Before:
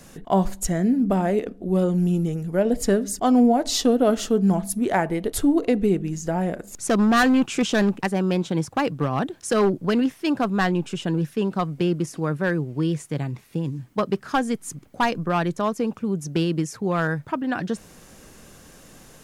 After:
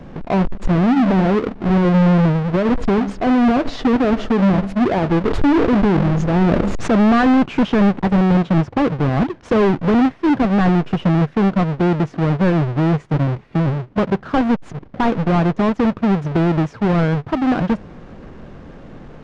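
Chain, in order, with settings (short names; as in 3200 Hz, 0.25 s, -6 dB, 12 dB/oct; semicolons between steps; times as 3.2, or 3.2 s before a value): half-waves squared off; limiter -17 dBFS, peak gain reduction 29 dB; tape spacing loss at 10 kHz 38 dB; 5.21–7.32 sustainer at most 22 dB/s; gain +7 dB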